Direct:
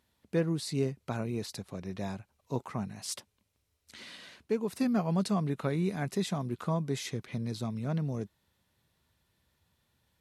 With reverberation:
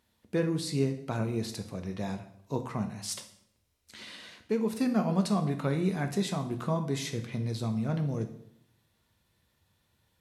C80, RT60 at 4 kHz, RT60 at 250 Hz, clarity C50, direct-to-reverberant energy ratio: 14.0 dB, 0.60 s, 0.85 s, 11.0 dB, 6.0 dB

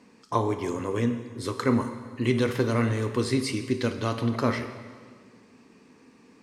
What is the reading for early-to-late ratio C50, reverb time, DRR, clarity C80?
9.5 dB, 1.8 s, 8.0 dB, 10.5 dB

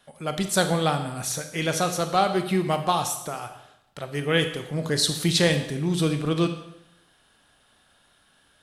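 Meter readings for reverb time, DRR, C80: 0.85 s, 7.0 dB, 11.5 dB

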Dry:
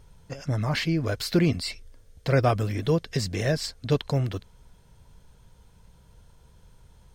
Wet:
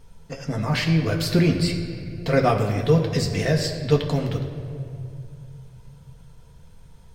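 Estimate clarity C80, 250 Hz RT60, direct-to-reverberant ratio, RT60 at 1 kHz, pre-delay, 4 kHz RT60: 8.0 dB, 2.7 s, 0.5 dB, 2.0 s, 4 ms, 1.6 s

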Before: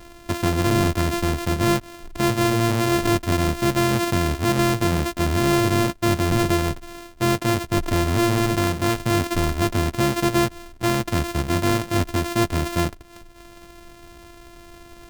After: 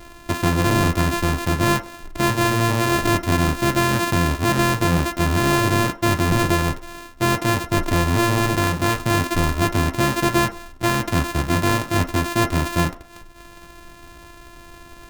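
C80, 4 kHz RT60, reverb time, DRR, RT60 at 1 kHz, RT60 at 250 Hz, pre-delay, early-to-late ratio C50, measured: 19.5 dB, 0.45 s, 0.50 s, 5.0 dB, 0.50 s, 0.40 s, 3 ms, 14.5 dB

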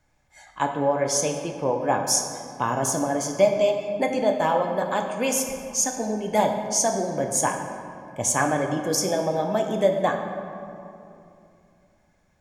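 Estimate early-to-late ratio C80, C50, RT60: 6.5 dB, 5.0 dB, 2.8 s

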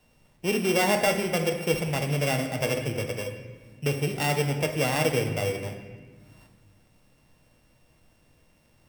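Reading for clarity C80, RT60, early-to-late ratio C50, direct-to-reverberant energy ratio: 9.0 dB, 1.5 s, 7.0 dB, 4.0 dB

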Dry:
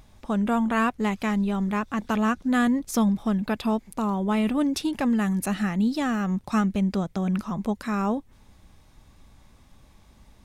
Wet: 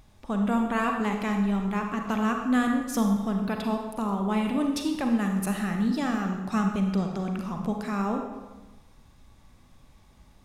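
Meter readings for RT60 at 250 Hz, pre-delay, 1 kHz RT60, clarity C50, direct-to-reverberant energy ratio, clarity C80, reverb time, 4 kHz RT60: 1.2 s, 35 ms, 1.2 s, 4.0 dB, 3.0 dB, 6.5 dB, 1.2 s, 0.95 s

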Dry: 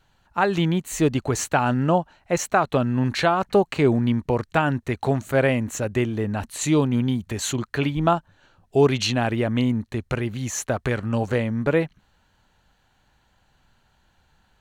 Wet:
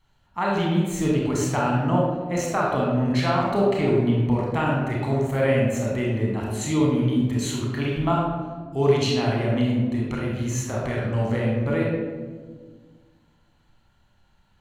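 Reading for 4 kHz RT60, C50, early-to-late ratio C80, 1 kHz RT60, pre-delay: 0.80 s, 0.0 dB, 2.5 dB, 1.3 s, 28 ms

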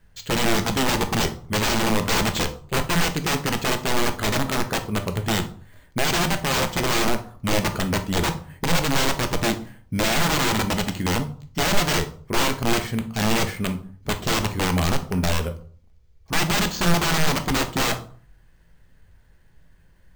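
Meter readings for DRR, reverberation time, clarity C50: 7.0 dB, 0.45 s, 13.0 dB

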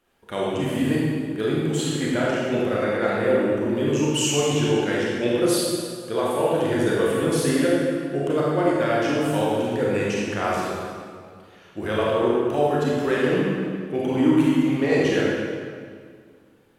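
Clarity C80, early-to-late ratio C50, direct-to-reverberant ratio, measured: −0.5 dB, −3.0 dB, −5.5 dB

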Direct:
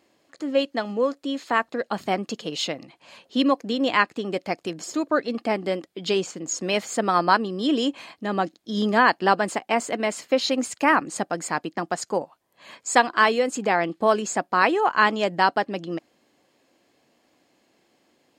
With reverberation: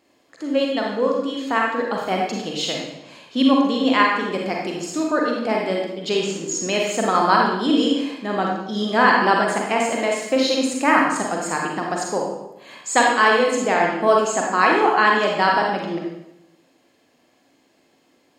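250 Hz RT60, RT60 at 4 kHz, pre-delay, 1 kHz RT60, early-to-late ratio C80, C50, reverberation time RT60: 0.95 s, 0.75 s, 36 ms, 0.80 s, 4.0 dB, 0.5 dB, 0.85 s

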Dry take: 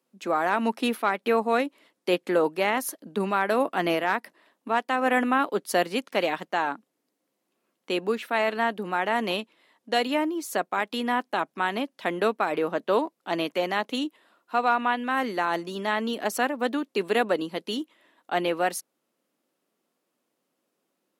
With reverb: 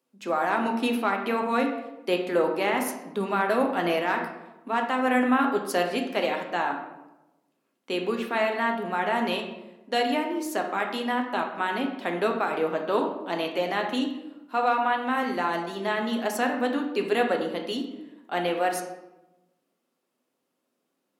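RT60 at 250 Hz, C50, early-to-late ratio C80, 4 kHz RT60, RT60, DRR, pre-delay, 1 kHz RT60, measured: 1.2 s, 6.0 dB, 9.0 dB, 0.60 s, 1.0 s, 2.5 dB, 7 ms, 0.95 s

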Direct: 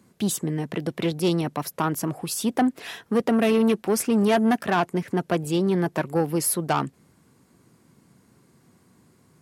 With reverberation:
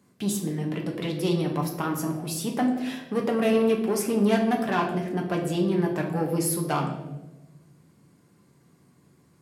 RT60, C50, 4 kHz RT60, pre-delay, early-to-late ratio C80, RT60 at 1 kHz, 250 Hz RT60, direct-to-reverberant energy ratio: 1.1 s, 6.5 dB, 0.70 s, 5 ms, 9.0 dB, 0.90 s, 1.5 s, 0.5 dB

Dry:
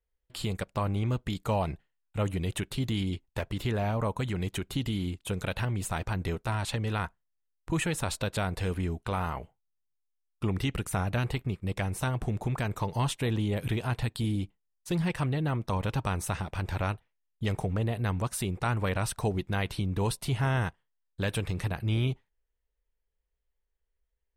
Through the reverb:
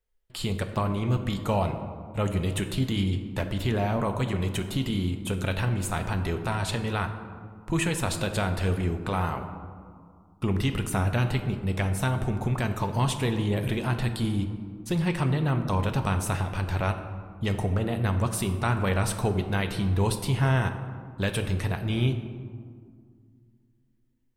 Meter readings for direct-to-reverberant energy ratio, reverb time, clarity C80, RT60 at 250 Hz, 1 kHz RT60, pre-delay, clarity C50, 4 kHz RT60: 6.0 dB, 2.1 s, 10.0 dB, 2.9 s, 2.0 s, 5 ms, 9.0 dB, 0.95 s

